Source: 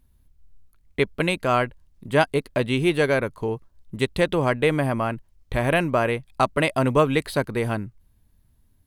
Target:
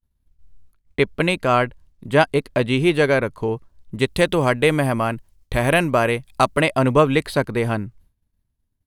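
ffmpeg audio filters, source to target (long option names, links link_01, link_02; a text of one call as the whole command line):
ffmpeg -i in.wav -filter_complex "[0:a]asettb=1/sr,asplit=3[link_01][link_02][link_03];[link_01]atrim=end=4.064[link_04];[link_02]atrim=start=4.06:end=6.61,asetpts=PTS-STARTPTS,afade=type=in:duration=0.004:curve=qsin,afade=type=out:start_time=2.546:duration=0.004:curve=qsin,aemphasis=mode=production:type=cd[link_05];[link_03]atrim=start=6.606[link_06];[link_04][link_05]acrossfade=duration=0.004:curve1=hsin:curve2=qsin[link_07];[link_07][link_06]acrossfade=duration=0.004:curve1=qsin:curve2=hsin,agate=range=-33dB:threshold=-48dB:ratio=3:detection=peak,highshelf=frequency=11000:gain=-6,volume=3.5dB" out.wav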